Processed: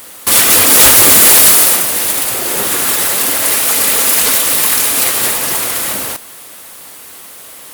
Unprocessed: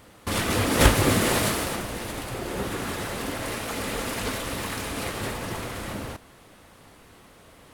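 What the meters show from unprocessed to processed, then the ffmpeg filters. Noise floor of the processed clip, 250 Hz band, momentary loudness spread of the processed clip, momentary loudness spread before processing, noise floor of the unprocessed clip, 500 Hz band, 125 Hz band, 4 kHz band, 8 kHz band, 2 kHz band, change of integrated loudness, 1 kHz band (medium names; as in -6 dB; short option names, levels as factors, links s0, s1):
-34 dBFS, +3.5 dB, 11 LU, 13 LU, -52 dBFS, +7.5 dB, -2.5 dB, +16.5 dB, +23.5 dB, +12.5 dB, +19.0 dB, +10.5 dB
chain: -af "aemphasis=mode=production:type=riaa,aeval=exprs='1.41*sin(PI/2*3.98*val(0)/1.41)':c=same,volume=0.631"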